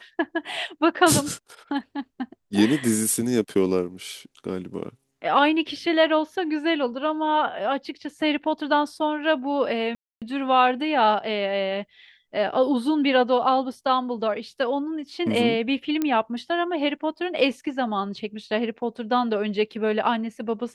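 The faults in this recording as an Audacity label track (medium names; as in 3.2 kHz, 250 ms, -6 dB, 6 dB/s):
9.950000	10.220000	dropout 267 ms
16.020000	16.020000	pop -12 dBFS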